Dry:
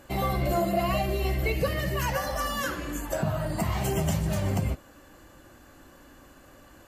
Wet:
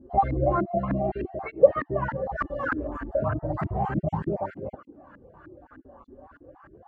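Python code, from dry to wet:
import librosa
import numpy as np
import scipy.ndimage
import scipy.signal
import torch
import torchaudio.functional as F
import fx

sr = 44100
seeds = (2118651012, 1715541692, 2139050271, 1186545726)

y = fx.spec_dropout(x, sr, seeds[0], share_pct=24)
y = fx.filter_lfo_lowpass(y, sr, shape='saw_up', hz=3.3, low_hz=260.0, high_hz=1600.0, q=5.4)
y = fx.air_absorb(y, sr, metres=100.0, at=(0.46, 2.39))
y = fx.flanger_cancel(y, sr, hz=0.33, depth_ms=6.7)
y = y * librosa.db_to_amplitude(2.0)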